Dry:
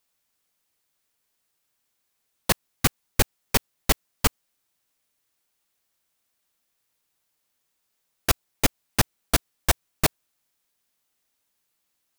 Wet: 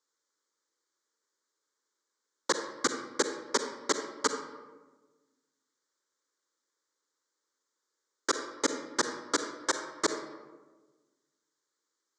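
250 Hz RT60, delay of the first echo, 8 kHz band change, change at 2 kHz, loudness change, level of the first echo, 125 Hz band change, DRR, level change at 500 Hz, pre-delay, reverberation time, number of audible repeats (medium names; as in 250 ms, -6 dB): 1.6 s, no echo, -5.0 dB, -5.0 dB, -6.5 dB, no echo, -27.5 dB, 6.5 dB, -1.0 dB, 39 ms, 1.3 s, no echo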